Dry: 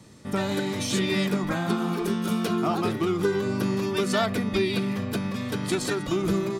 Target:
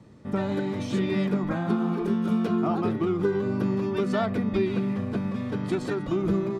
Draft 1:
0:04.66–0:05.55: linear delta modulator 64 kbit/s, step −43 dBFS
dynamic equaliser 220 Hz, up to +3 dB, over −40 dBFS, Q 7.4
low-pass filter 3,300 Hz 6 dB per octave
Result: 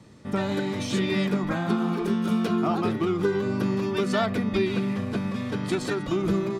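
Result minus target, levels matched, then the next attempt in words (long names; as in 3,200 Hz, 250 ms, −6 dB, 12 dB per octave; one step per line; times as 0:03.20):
4,000 Hz band +6.5 dB
0:04.66–0:05.55: linear delta modulator 64 kbit/s, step −43 dBFS
dynamic equaliser 220 Hz, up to +3 dB, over −40 dBFS, Q 7.4
low-pass filter 1,100 Hz 6 dB per octave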